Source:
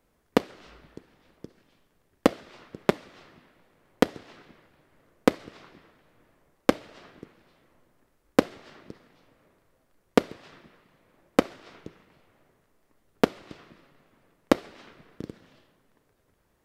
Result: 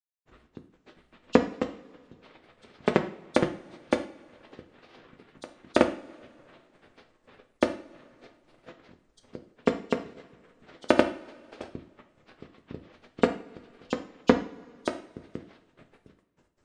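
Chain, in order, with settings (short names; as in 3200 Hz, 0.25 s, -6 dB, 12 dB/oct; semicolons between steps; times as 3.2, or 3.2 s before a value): nonlinear frequency compression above 2800 Hz 1.5:1; in parallel at -1 dB: compressor, threshold -47 dBFS, peak gain reduction 31.5 dB; on the sum: grains, grains 20/s, spray 0.933 s, pitch spread up and down by 3 st; transient shaper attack +6 dB, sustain -5 dB; two-slope reverb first 0.42 s, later 2.4 s, from -22 dB, DRR 4.5 dB; gain -6.5 dB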